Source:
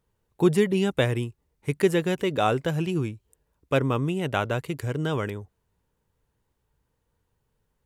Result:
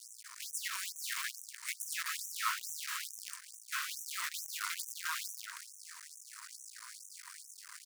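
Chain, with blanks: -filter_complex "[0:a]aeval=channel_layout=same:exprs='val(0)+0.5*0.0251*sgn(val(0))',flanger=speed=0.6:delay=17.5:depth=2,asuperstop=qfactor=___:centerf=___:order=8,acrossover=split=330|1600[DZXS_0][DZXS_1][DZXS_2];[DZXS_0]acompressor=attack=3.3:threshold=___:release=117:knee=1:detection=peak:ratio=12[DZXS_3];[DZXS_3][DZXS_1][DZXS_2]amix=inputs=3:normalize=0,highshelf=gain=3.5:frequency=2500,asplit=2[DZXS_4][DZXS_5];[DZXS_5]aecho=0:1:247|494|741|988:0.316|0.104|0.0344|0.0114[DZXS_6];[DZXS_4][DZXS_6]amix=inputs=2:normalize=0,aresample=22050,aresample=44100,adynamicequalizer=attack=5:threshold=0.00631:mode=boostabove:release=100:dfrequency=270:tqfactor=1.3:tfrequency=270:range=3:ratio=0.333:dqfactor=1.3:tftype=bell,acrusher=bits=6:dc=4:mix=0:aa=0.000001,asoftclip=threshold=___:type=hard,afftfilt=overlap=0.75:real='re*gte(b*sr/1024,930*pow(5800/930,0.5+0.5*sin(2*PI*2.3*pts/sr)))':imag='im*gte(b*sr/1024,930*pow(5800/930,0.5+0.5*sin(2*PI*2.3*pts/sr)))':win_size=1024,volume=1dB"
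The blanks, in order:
1.6, 3100, -39dB, -26dB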